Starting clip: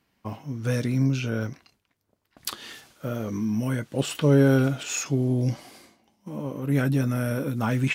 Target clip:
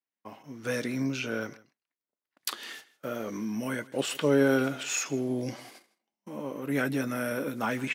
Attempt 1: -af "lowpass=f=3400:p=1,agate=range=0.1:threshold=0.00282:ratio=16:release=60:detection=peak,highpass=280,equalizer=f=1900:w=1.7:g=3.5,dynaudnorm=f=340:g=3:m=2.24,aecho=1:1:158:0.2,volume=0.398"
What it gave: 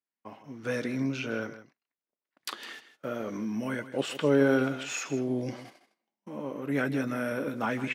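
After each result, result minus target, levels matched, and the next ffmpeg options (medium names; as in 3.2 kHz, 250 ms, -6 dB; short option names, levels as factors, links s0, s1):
echo-to-direct +7.5 dB; 4 kHz band -2.5 dB
-af "lowpass=f=3400:p=1,agate=range=0.1:threshold=0.00282:ratio=16:release=60:detection=peak,highpass=280,equalizer=f=1900:w=1.7:g=3.5,dynaudnorm=f=340:g=3:m=2.24,aecho=1:1:158:0.0841,volume=0.398"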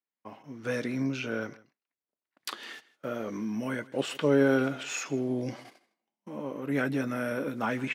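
4 kHz band -2.5 dB
-af "agate=range=0.1:threshold=0.00282:ratio=16:release=60:detection=peak,highpass=280,equalizer=f=1900:w=1.7:g=3.5,dynaudnorm=f=340:g=3:m=2.24,aecho=1:1:158:0.0841,volume=0.398"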